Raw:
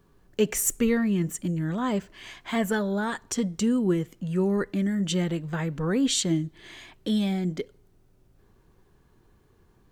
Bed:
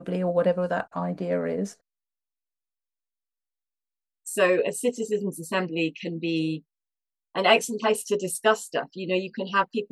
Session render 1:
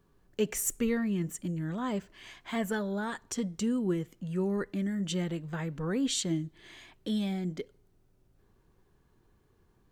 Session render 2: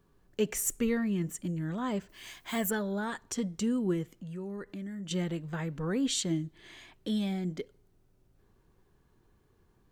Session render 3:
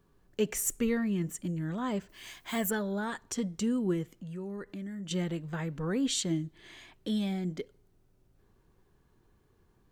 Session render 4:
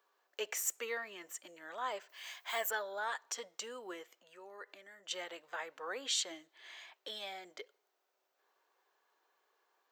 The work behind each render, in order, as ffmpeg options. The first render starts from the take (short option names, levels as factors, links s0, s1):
-af "volume=0.501"
-filter_complex "[0:a]asettb=1/sr,asplit=3[s0][s1][s2];[s0]atrim=end=2.094[s3];[s1]atrim=start=2.09:end=2.71,asetpts=PTS-STARTPTS,afade=t=in:d=0.004:c=qsin,afade=t=out:st=0.616:d=0.004:c=qsin,aemphasis=mode=production:type=50fm[s4];[s2]atrim=start=2.706[s5];[s3][s4]acrossfade=d=0.004:c1=hsin:c2=qsin[s6];[s6][s5]acrossfade=d=0.004:c1=qsin:c2=hsin,asettb=1/sr,asplit=3[s7][s8][s9];[s7]atrim=end=4.144[s10];[s8]atrim=start=4.14:end=5.11,asetpts=PTS-STARTPTS,afade=t=in:d=0.004:c=qsin,afade=t=out:st=0.966:d=0.004:c=qsin,acompressor=threshold=0.00708:ratio=2:attack=3.2:release=140:knee=1:detection=peak[s11];[s9]atrim=start=5.106[s12];[s10][s11]acrossfade=d=0.004:c1=hsin:c2=qsin[s13];[s13][s12]acrossfade=d=0.004:c1=qsin:c2=hsin"
-af anull
-af "highpass=f=580:w=0.5412,highpass=f=580:w=1.3066,equalizer=f=10000:t=o:w=0.39:g=-15"